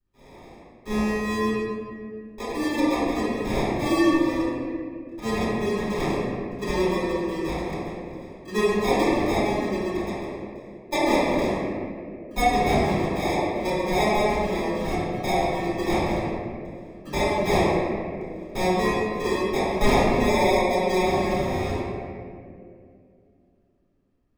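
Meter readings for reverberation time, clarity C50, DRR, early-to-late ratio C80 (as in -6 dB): 2.4 s, -4.5 dB, -13.0 dB, -1.5 dB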